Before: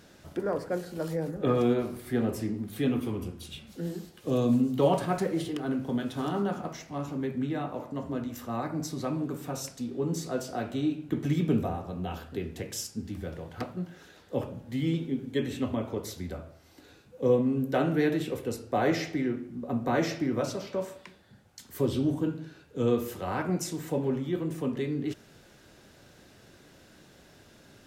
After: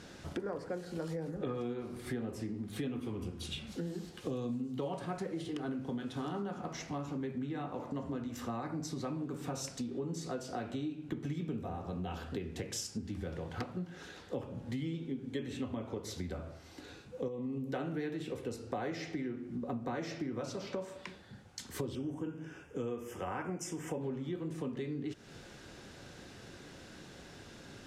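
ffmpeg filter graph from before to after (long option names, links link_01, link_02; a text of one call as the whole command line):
ffmpeg -i in.wav -filter_complex "[0:a]asettb=1/sr,asplit=3[link_01][link_02][link_03];[link_01]atrim=end=17.284[link_04];[link_02]atrim=start=17.28:end=17.71,asetpts=PTS-STARTPTS,afade=type=in:duration=0.004:curve=qsin,afade=type=out:start_time=0.426:duration=0.004:curve=qsin,acompressor=threshold=-29dB:ratio=3:attack=3.2:release=140:knee=1:detection=peak,asuperstop=centerf=1500:order=8:qfactor=3.9[link_05];[link_03]atrim=start=17.706[link_06];[link_04][link_05]acrossfade=duration=0.004:curve1=hsin:curve2=qsin[link_07];[link_07][link_06]acrossfade=duration=0.004:curve1=qsin:curve2=hsin,asettb=1/sr,asplit=3[link_08][link_09][link_10];[link_08]atrim=end=21.954[link_11];[link_09]atrim=start=21.95:end=24.01,asetpts=PTS-STARTPTS,afade=type=in:duration=0.004:curve=qsin,afade=type=out:start_time=2.056:duration=0.004:curve=qsin,asuperstop=centerf=4100:order=4:qfactor=2,equalizer=frequency=140:width=0.57:gain=-4.5[link_12];[link_10]atrim=start=24.006[link_13];[link_11][link_12]acrossfade=duration=0.004:curve1=hsin:curve2=qsin[link_14];[link_14][link_13]acrossfade=duration=0.004:curve1=qsin:curve2=hsin,lowpass=8800,bandreject=frequency=620:width=13,acompressor=threshold=-40dB:ratio=6,volume=4dB" out.wav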